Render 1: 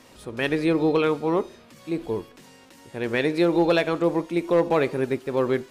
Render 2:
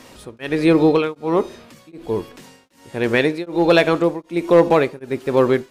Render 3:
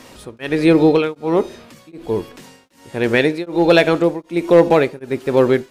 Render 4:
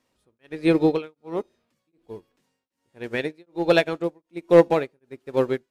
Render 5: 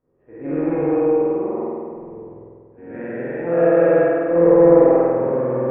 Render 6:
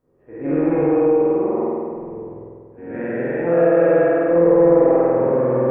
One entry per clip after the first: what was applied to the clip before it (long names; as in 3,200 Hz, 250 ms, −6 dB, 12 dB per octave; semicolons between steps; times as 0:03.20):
tremolo along a rectified sine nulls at 1.3 Hz; level +8 dB
dynamic equaliser 1,100 Hz, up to −6 dB, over −39 dBFS, Q 5; level +2 dB
expander for the loud parts 2.5 to 1, over −26 dBFS; level −2 dB
every bin's largest magnitude spread in time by 480 ms; Gaussian smoothing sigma 5.8 samples; spring reverb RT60 2 s, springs 47 ms, chirp 75 ms, DRR −8 dB; level −12 dB
downward compressor 2 to 1, threshold −18 dBFS, peak gain reduction 6.5 dB; level +4 dB